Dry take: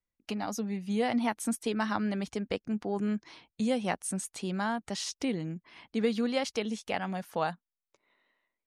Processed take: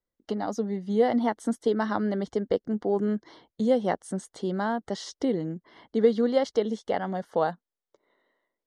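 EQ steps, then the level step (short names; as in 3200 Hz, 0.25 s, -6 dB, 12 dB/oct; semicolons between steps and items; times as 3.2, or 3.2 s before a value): Butterworth band-stop 2500 Hz, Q 3.1; air absorption 74 m; bell 450 Hz +9.5 dB 1.5 oct; 0.0 dB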